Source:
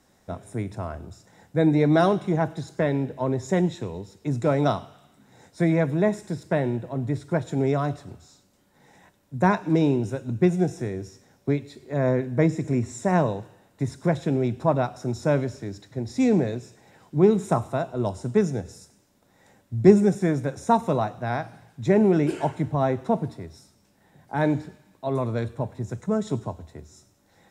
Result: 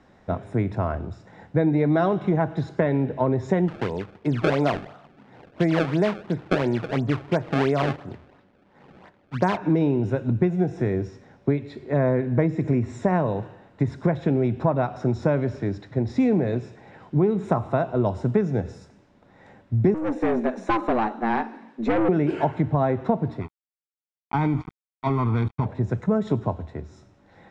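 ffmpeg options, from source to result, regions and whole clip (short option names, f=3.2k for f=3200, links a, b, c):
-filter_complex "[0:a]asettb=1/sr,asplit=3[a][b][c];[a]atrim=end=3.684[d];[b]atrim=start=3.68:end=9.57,asetpts=PTS-STARTPTS,afade=t=in:d=0.004:c=qsin,afade=t=out:st=5.886:d=0.004:c=qsin,lowpass=3.8k,acrusher=samples=26:mix=1:aa=0.000001:lfo=1:lforange=41.6:lforate=2.9,lowshelf=f=140:g=-8.5[e];[c]atrim=start=9.566[f];[d][e]acrossfade=d=0.004:c1=hsin:c2=qsin[g];[g][f]acrossfade=d=0.004:c1=qsin:c2=hsin,asettb=1/sr,asplit=3[h][i][j];[h]atrim=end=19.944[k];[i]atrim=start=19.94:end=22.09,asetpts=PTS-STARTPTS,afade=t=in:d=0.004:c=qsin,afade=t=out:st=2.146:d=0.004:c=qsin,afreqshift=110,aeval=exprs='(tanh(12.6*val(0)+0.45)-tanh(0.45))/12.6':c=same[l];[j]atrim=start=22.086[m];[k][l]acrossfade=d=0.004:c1=hsin:c2=qsin[n];[n][m]acrossfade=d=0.004:c1=qsin:c2=hsin,asettb=1/sr,asplit=3[o][p][q];[o]atrim=end=23.414[r];[p]atrim=start=23.41:end=25.66,asetpts=PTS-STARTPTS,afade=t=in:d=0.004:c=qsin,afade=t=out:st=2.246:d=0.004:c=qsin,aeval=exprs='sgn(val(0))*max(abs(val(0))-0.0126,0)':c=same,aecho=1:1:0.9:0.92,atrim=end_sample=99225,acompressor=threshold=-24dB:ratio=6:attack=3.2:release=140:knee=1:detection=peak[s];[q]atrim=start=25.656[t];[r][s]acrossfade=d=0.004:c1=hsin:c2=qsin[u];[u][t]acrossfade=d=0.004:c1=qsin:c2=hsin,lowpass=2.6k,acompressor=threshold=-25dB:ratio=6,volume=7.5dB"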